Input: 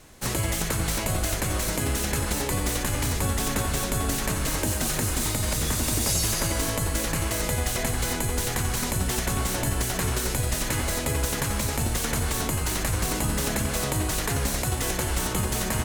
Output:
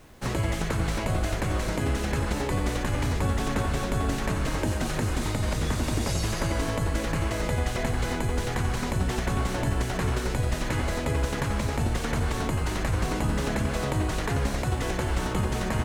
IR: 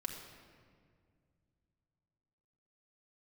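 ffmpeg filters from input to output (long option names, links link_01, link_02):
-af "aemphasis=mode=reproduction:type=75fm,acrusher=bits=9:mix=0:aa=0.000001"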